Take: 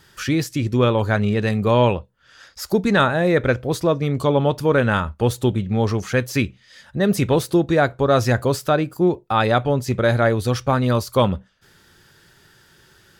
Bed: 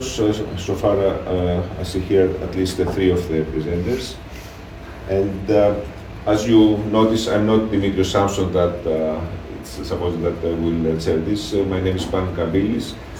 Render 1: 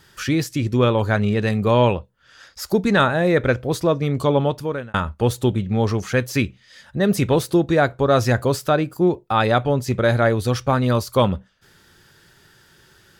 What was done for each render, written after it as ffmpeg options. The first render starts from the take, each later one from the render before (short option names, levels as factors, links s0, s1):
-filter_complex "[0:a]asplit=2[s0][s1];[s0]atrim=end=4.94,asetpts=PTS-STARTPTS,afade=t=out:st=4.37:d=0.57[s2];[s1]atrim=start=4.94,asetpts=PTS-STARTPTS,afade=t=in:d=0.004:c=hsin[s3];[s2][s3]concat=n=2:v=0:a=1"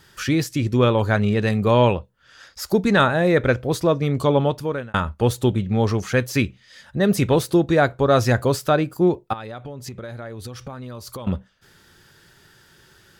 -filter_complex "[0:a]asettb=1/sr,asplit=3[s0][s1][s2];[s0]atrim=end=9.334[s3];[s1]atrim=start=9.33:end=11.27,asetpts=PTS-STARTPTS,afade=t=in:d=0.004:c=qsin,afade=t=out:st=1.936:d=0.004:c=qsin,acompressor=threshold=0.0316:ratio=12:attack=3.2:release=140:knee=1:detection=peak[s4];[s2]atrim=start=11.266[s5];[s3][s4]acrossfade=d=0.004:c1=hsin:c2=qsin[s6];[s6][s5]acrossfade=d=0.004:c1=qsin:c2=hsin"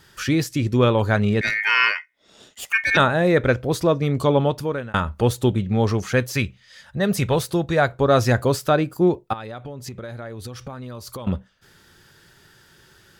-filter_complex "[0:a]asettb=1/sr,asplit=3[s0][s1][s2];[s0]atrim=end=1.414[s3];[s1]atrim=start=1.41:end=2.97,asetpts=PTS-STARTPTS,afade=t=in:d=0.004:c=qsin,afade=t=out:st=1.556:d=0.004:c=qsin,aeval=exprs='val(0)*sin(2*PI*2000*n/s)':c=same[s4];[s2]atrim=start=2.966[s5];[s3][s4]acrossfade=d=0.004:c1=hsin:c2=qsin[s6];[s6][s5]acrossfade=d=0.004:c1=qsin:c2=hsin,asettb=1/sr,asplit=3[s7][s8][s9];[s7]atrim=end=3.644[s10];[s8]atrim=start=3.64:end=5.29,asetpts=PTS-STARTPTS,afade=t=in:d=0.004:c=qsin,afade=t=out:st=1.646:d=0.004:c=qsin,acompressor=mode=upward:threshold=0.0562:ratio=2.5:attack=3.2:release=140:knee=2.83:detection=peak[s11];[s9]atrim=start=5.286[s12];[s10][s11]acrossfade=d=0.004:c1=hsin:c2=qsin[s13];[s13][s12]acrossfade=d=0.004:c1=qsin:c2=hsin,asettb=1/sr,asplit=3[s14][s15][s16];[s14]atrim=end=6.344[s17];[s15]atrim=start=6.34:end=7.93,asetpts=PTS-STARTPTS,afade=t=in:d=0.004:c=qsin,afade=t=out:st=1.586:d=0.004:c=qsin,equalizer=f=300:w=1.5:g=-7.5[s18];[s16]atrim=start=7.926[s19];[s17][s18]acrossfade=d=0.004:c1=hsin:c2=qsin[s20];[s20][s19]acrossfade=d=0.004:c1=qsin:c2=hsin"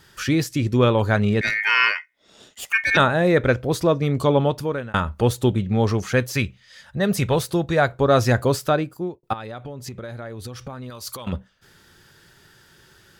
-filter_complex "[0:a]asettb=1/sr,asplit=3[s0][s1][s2];[s0]atrim=end=10.904[s3];[s1]atrim=start=10.9:end=11.33,asetpts=PTS-STARTPTS,afade=t=in:d=0.004:c=qsin,afade=t=out:st=0.426:d=0.004:c=qsin,tiltshelf=f=940:g=-6[s4];[s2]atrim=start=11.326[s5];[s3][s4]acrossfade=d=0.004:c1=hsin:c2=qsin[s6];[s6][s5]acrossfade=d=0.004:c1=qsin:c2=hsin,asplit=2[s7][s8];[s7]atrim=end=9.23,asetpts=PTS-STARTPTS,afade=t=out:st=8.63:d=0.6[s9];[s8]atrim=start=9.23,asetpts=PTS-STARTPTS,afade=t=in:d=0.004:c=hsin[s10];[s9][s10]concat=n=2:v=0:a=1"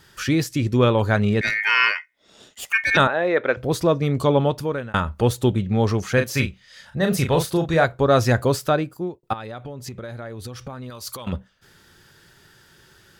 -filter_complex "[0:a]asettb=1/sr,asplit=3[s0][s1][s2];[s0]atrim=end=3.074[s3];[s1]atrim=start=3.07:end=3.57,asetpts=PTS-STARTPTS,afade=t=in:d=0.004:c=qsin,afade=t=out:st=0.496:d=0.004:c=qsin,highpass=410,lowpass=3100[s4];[s2]atrim=start=3.566[s5];[s3][s4]acrossfade=d=0.004:c1=hsin:c2=qsin[s6];[s6][s5]acrossfade=d=0.004:c1=qsin:c2=hsin,asettb=1/sr,asplit=3[s7][s8][s9];[s7]atrim=end=6.144[s10];[s8]atrim=start=6.14:end=7.85,asetpts=PTS-STARTPTS,afade=t=in:d=0.004:c=qsin,afade=t=out:st=1.706:d=0.004:c=qsin,asplit=2[s11][s12];[s12]adelay=37,volume=0.501[s13];[s11][s13]amix=inputs=2:normalize=0,atrim=end_sample=75411[s14];[s9]atrim=start=7.846[s15];[s10][s14]acrossfade=d=0.004:c1=hsin:c2=qsin[s16];[s16][s15]acrossfade=d=0.004:c1=qsin:c2=hsin"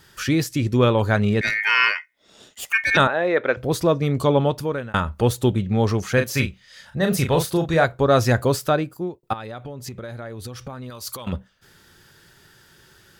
-af "highshelf=f=11000:g=4"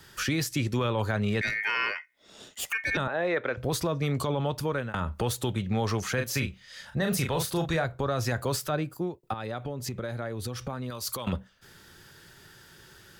-filter_complex "[0:a]acrossover=split=150|690[s0][s1][s2];[s0]acompressor=threshold=0.0251:ratio=4[s3];[s1]acompressor=threshold=0.0316:ratio=4[s4];[s2]acompressor=threshold=0.0398:ratio=4[s5];[s3][s4][s5]amix=inputs=3:normalize=0,alimiter=limit=0.126:level=0:latency=1:release=15"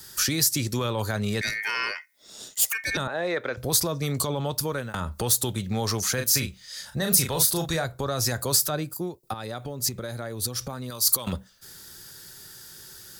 -af "aexciter=amount=5.4:drive=1.3:freq=4000"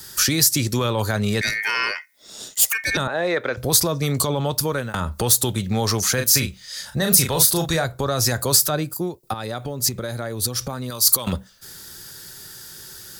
-af "volume=1.88,alimiter=limit=0.891:level=0:latency=1"